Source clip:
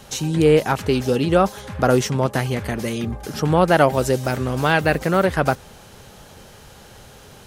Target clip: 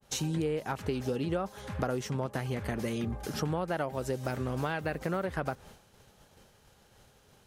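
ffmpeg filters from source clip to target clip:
-af "agate=range=0.0224:threshold=0.0178:ratio=3:detection=peak,acompressor=threshold=0.0794:ratio=10,adynamicequalizer=threshold=0.00794:dfrequency=2400:dqfactor=0.7:tfrequency=2400:tqfactor=0.7:attack=5:release=100:ratio=0.375:range=2:mode=cutabove:tftype=highshelf,volume=0.501"

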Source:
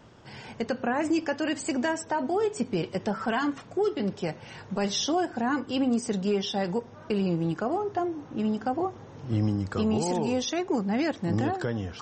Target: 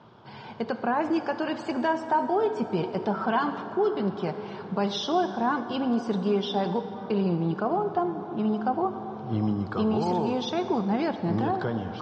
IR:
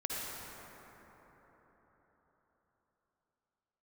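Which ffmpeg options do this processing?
-filter_complex "[0:a]highpass=140,equalizer=f=280:t=q:w=4:g=-7,equalizer=f=520:t=q:w=4:g=-5,equalizer=f=980:t=q:w=4:g=4,equalizer=f=1900:t=q:w=4:g=-10,equalizer=f=2700:t=q:w=4:g=-7,lowpass=f=3900:w=0.5412,lowpass=f=3900:w=1.3066,asplit=2[s0][s1];[1:a]atrim=start_sample=2205,highshelf=f=6700:g=11.5[s2];[s1][s2]afir=irnorm=-1:irlink=0,volume=0.266[s3];[s0][s3]amix=inputs=2:normalize=0,volume=1.19"

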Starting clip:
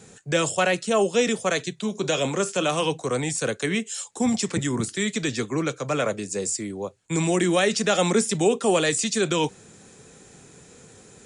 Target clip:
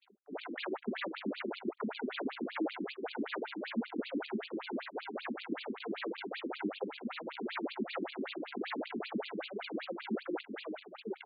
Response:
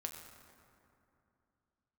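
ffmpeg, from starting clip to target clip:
-filter_complex "[0:a]asplit=2[s0][s1];[s1]adelay=945,lowpass=f=3900:p=1,volume=0.237,asplit=2[s2][s3];[s3]adelay=945,lowpass=f=3900:p=1,volume=0.52,asplit=2[s4][s5];[s5]adelay=945,lowpass=f=3900:p=1,volume=0.52,asplit=2[s6][s7];[s7]adelay=945,lowpass=f=3900:p=1,volume=0.52,asplit=2[s8][s9];[s9]adelay=945,lowpass=f=3900:p=1,volume=0.52[s10];[s0][s2][s4][s6][s8][s10]amix=inputs=6:normalize=0,aeval=exprs='0.0596*(abs(mod(val(0)/0.0596+3,4)-2)-1)':c=same,asettb=1/sr,asplit=3[s11][s12][s13];[s11]atrim=end=0.954[s14];[s12]atrim=start=0.95:end=3.49,asetpts=PTS-STARTPTS,afade=t=in:d=0.004:c=qsin,afade=t=out:st=2.536:d=0.004:c=qsin,highshelf=f=5400:g=11.5[s15];[s13]atrim=start=3.486[s16];[s14][s15]acrossfade=d=0.004:c1=hsin:c2=qsin[s17];[s17][s16]acrossfade=d=0.004:c1=qsin:c2=hsin,anlmdn=0.251,lowshelf=f=280:g=10,acrusher=samples=42:mix=1:aa=0.000001:lfo=1:lforange=67.2:lforate=2.6,acompressor=threshold=0.0447:ratio=16,agate=range=0.158:threshold=0.00178:ratio=16:detection=peak,afftfilt=real='re*between(b*sr/1024,260*pow(3400/260,0.5+0.5*sin(2*PI*5.2*pts/sr))/1.41,260*pow(3400/260,0.5+0.5*sin(2*PI*5.2*pts/sr))*1.41)':imag='im*between(b*sr/1024,260*pow(3400/260,0.5+0.5*sin(2*PI*5.2*pts/sr))/1.41,260*pow(3400/260,0.5+0.5*sin(2*PI*5.2*pts/sr))*1.41)':win_size=1024:overlap=0.75,volume=1.26"

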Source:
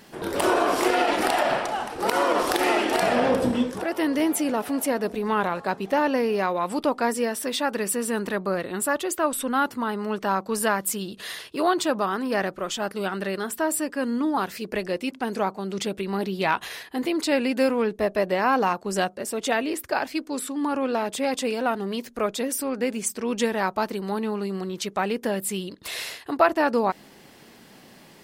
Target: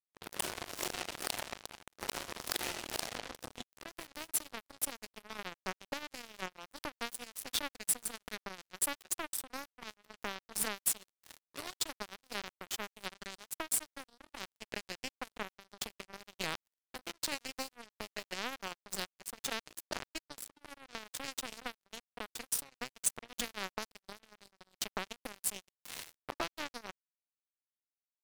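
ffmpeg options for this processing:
-filter_complex "[0:a]acrossover=split=2900[s0][s1];[s0]acompressor=threshold=0.0282:ratio=6[s2];[s2][s1]amix=inputs=2:normalize=0,acrusher=bits=3:mix=0:aa=0.5,volume=0.668"

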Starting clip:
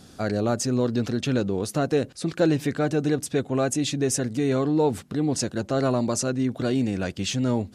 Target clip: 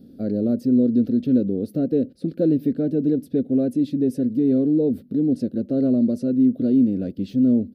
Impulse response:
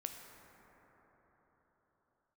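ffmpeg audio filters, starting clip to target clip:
-af "firequalizer=gain_entry='entry(120,0);entry(250,15);entry(350,5);entry(540,5);entry(940,-27);entry(1400,-15);entry(2200,-16);entry(4300,-10);entry(6800,-27);entry(14000,3)':delay=0.05:min_phase=1,volume=0.562"

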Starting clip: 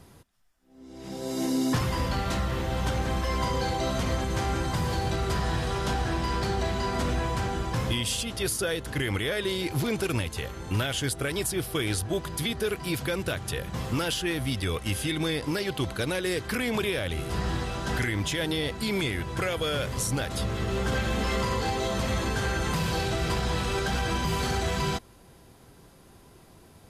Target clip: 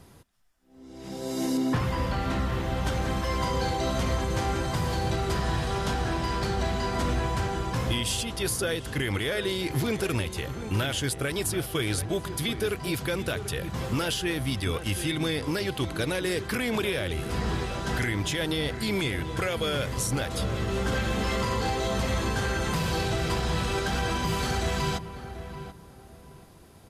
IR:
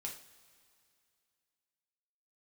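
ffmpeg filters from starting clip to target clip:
-filter_complex "[0:a]asettb=1/sr,asplit=3[s0][s1][s2];[s0]atrim=end=1.574[s3];[s1]atrim=start=1.57:end=2.85,asetpts=PTS-STARTPTS,afade=t=in:d=0.004:c=qsin,afade=t=out:st=1.276:d=0.004:c=qsin,acrossover=split=3200[s4][s5];[s5]acompressor=threshold=0.00501:ratio=4:attack=1:release=60[s6];[s4][s6]amix=inputs=2:normalize=0[s7];[s2]atrim=start=2.846[s8];[s3][s7]acrossfade=d=0.004:c1=hsin:c2=qsin[s9];[s9][s8]acrossfade=d=0.004:c1=qsin:c2=hsin,asplit=2[s10][s11];[s11]adelay=735,lowpass=f=1500:p=1,volume=0.299,asplit=2[s12][s13];[s13]adelay=735,lowpass=f=1500:p=1,volume=0.27,asplit=2[s14][s15];[s15]adelay=735,lowpass=f=1500:p=1,volume=0.27[s16];[s12][s14][s16]amix=inputs=3:normalize=0[s17];[s10][s17]amix=inputs=2:normalize=0"

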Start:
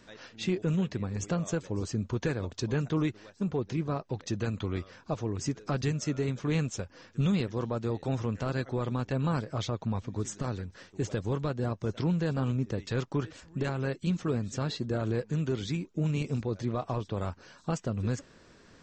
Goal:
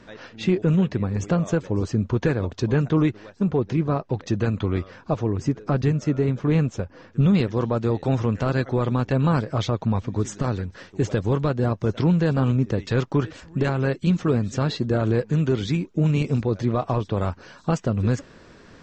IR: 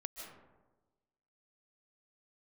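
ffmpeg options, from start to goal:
-af "asetnsamples=n=441:p=0,asendcmd='5.35 lowpass f 1200;7.35 lowpass f 3800',lowpass=f=2200:p=1,volume=2.82"

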